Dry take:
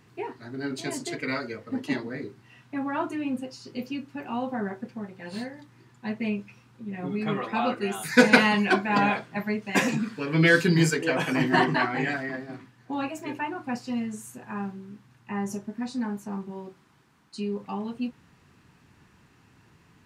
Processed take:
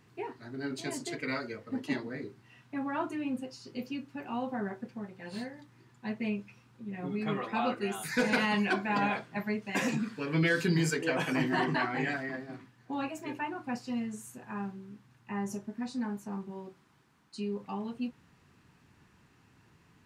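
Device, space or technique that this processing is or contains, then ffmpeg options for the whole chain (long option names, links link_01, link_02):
clipper into limiter: -af "asoftclip=type=hard:threshold=-7dB,alimiter=limit=-14.5dB:level=0:latency=1:release=73,volume=-4.5dB"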